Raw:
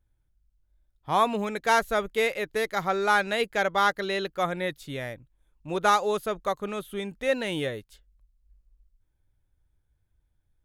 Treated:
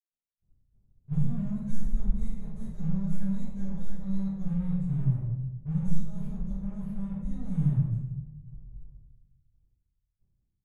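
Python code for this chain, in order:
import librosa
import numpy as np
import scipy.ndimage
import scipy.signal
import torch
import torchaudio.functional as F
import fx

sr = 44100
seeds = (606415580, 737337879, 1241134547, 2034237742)

y = fx.tracing_dist(x, sr, depth_ms=0.04)
y = scipy.signal.sosfilt(scipy.signal.ellip(3, 1.0, 40, [160.0, 6300.0], 'bandstop', fs=sr, output='sos'), y)
y = fx.low_shelf(y, sr, hz=380.0, db=7.5)
y = fx.fixed_phaser(y, sr, hz=2200.0, stages=4)
y = np.sign(y) * np.maximum(np.abs(y) - 10.0 ** (-54.0 / 20.0), 0.0)
y = fx.spacing_loss(y, sr, db_at_10k=22)
y = fx.room_shoebox(y, sr, seeds[0], volume_m3=410.0, walls='mixed', distance_m=5.2)
y = fx.attack_slew(y, sr, db_per_s=530.0)
y = y * librosa.db_to_amplitude(-3.5)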